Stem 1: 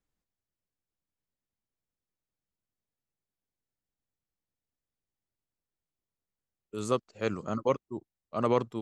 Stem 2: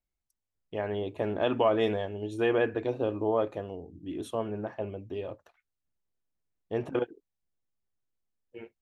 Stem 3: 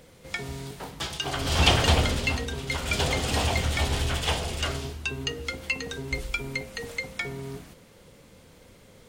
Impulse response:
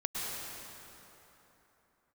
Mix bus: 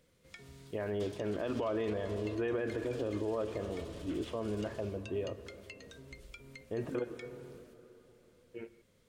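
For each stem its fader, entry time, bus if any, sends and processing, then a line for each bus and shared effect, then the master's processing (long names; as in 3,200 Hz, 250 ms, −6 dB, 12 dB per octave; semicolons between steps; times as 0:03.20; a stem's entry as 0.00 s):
muted
−1.0 dB, 0.00 s, send −17.5 dB, low-pass filter 2,500 Hz
−16.5 dB, 0.00 s, no send, downward compressor, threshold −30 dBFS, peak gain reduction 14.5 dB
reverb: on, RT60 3.5 s, pre-delay 98 ms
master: parametric band 800 Hz −9 dB 0.38 octaves; brickwall limiter −26.5 dBFS, peak gain reduction 10.5 dB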